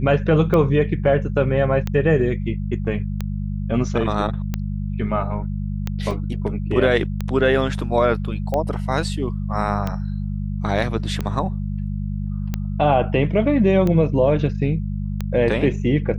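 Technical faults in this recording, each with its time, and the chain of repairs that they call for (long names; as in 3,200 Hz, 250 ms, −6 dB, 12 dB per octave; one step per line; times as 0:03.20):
mains hum 50 Hz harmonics 4 −25 dBFS
scratch tick 45 rpm −11 dBFS
0:06.11: drop-out 2.1 ms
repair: click removal
hum removal 50 Hz, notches 4
repair the gap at 0:06.11, 2.1 ms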